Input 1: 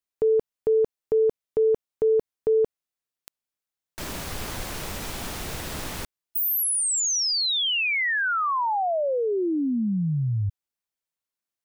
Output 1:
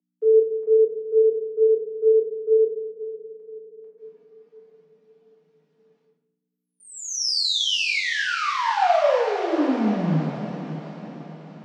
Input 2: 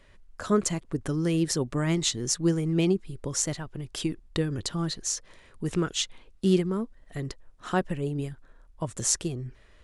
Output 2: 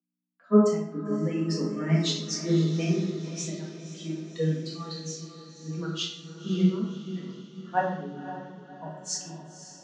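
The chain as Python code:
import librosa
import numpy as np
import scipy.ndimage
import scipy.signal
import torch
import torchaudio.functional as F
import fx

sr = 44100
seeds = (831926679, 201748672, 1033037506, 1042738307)

p1 = fx.bin_expand(x, sr, power=2.0)
p2 = fx.dynamic_eq(p1, sr, hz=660.0, q=1.5, threshold_db=-40.0, ratio=3.0, max_db=5)
p3 = scipy.signal.sosfilt(scipy.signal.butter(4, 5800.0, 'lowpass', fs=sr, output='sos'), p2)
p4 = p3 + fx.echo_diffused(p3, sr, ms=537, feedback_pct=62, wet_db=-8.5, dry=0)
p5 = fx.gate_hold(p4, sr, open_db=-39.0, close_db=-47.0, hold_ms=34.0, range_db=-22, attack_ms=0.24, release_ms=89.0)
p6 = fx.room_shoebox(p5, sr, seeds[0], volume_m3=310.0, walls='mixed', distance_m=1.8)
p7 = fx.add_hum(p6, sr, base_hz=60, snr_db=34)
p8 = scipy.signal.sosfilt(scipy.signal.butter(16, 150.0, 'highpass', fs=sr, output='sos'), p7)
p9 = fx.band_widen(p8, sr, depth_pct=40)
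y = F.gain(torch.from_numpy(p9), -4.5).numpy()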